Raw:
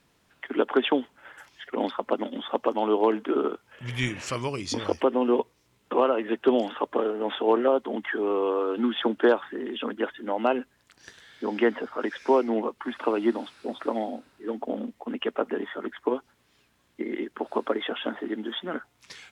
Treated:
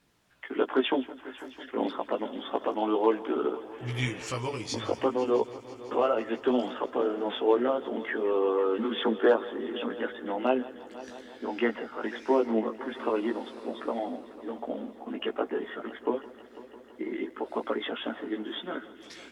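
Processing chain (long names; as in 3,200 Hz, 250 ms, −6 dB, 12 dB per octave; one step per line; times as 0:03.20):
multi-voice chorus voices 2, 0.28 Hz, delay 17 ms, depth 1.6 ms
echo machine with several playback heads 166 ms, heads first and third, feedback 72%, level −19.5 dB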